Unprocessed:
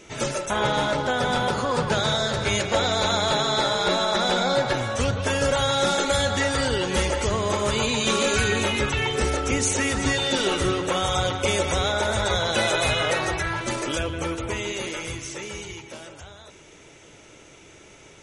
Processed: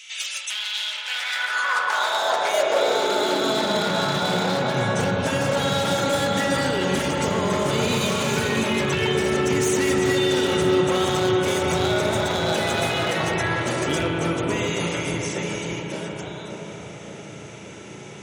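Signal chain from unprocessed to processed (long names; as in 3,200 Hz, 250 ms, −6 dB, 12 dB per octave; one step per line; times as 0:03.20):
wavefolder on the positive side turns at −19.5 dBFS
in parallel at −2 dB: downward compressor, threshold −39 dBFS, peak gain reduction 18.5 dB
on the sum: brickwall limiter −16.5 dBFS, peak gain reduction 8 dB
on a send: delay with a low-pass on its return 585 ms, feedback 52%, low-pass 880 Hz, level −4 dB
on the sum: spring reverb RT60 4 s, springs 35 ms, chirp 50 ms, DRR 2.5 dB
high-pass filter sweep 2,900 Hz → 150 Hz, 0:00.91–0:04.09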